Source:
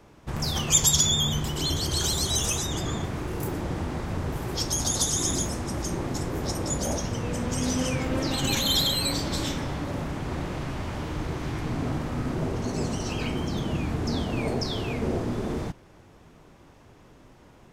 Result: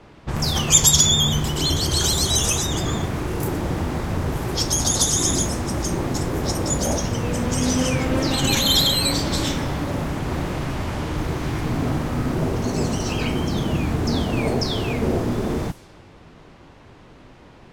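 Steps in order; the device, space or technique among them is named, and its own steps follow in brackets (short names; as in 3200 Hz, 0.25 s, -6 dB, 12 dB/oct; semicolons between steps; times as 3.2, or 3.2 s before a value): cassette deck with a dynamic noise filter (white noise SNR 28 dB; low-pass opened by the level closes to 2600 Hz, open at -27 dBFS); gain +6 dB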